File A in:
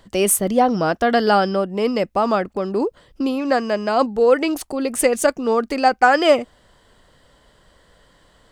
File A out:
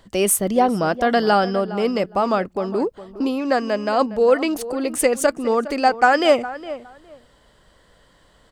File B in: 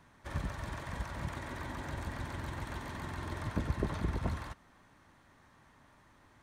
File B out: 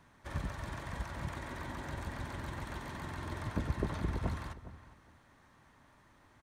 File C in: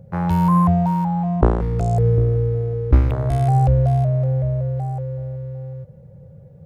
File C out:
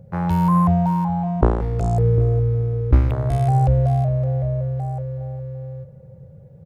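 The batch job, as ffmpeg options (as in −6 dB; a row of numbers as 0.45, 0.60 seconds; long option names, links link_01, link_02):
-filter_complex "[0:a]asplit=2[link_01][link_02];[link_02]adelay=411,lowpass=frequency=2200:poles=1,volume=-14.5dB,asplit=2[link_03][link_04];[link_04]adelay=411,lowpass=frequency=2200:poles=1,volume=0.19[link_05];[link_01][link_03][link_05]amix=inputs=3:normalize=0,volume=-1dB"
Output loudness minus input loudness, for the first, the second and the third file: −1.0, −1.0, −1.0 LU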